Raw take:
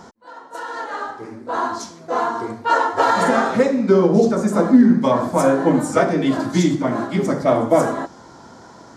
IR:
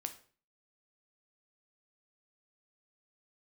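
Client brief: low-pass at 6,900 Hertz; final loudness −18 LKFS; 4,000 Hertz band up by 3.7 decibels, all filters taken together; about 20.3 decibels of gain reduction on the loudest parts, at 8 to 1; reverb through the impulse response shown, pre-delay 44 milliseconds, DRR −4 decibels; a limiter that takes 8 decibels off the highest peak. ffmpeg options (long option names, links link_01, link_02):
-filter_complex "[0:a]lowpass=6900,equalizer=frequency=4000:width_type=o:gain=5,acompressor=threshold=-29dB:ratio=8,alimiter=level_in=2dB:limit=-24dB:level=0:latency=1,volume=-2dB,asplit=2[link_01][link_02];[1:a]atrim=start_sample=2205,adelay=44[link_03];[link_02][link_03]afir=irnorm=-1:irlink=0,volume=5.5dB[link_04];[link_01][link_04]amix=inputs=2:normalize=0,volume=12dB"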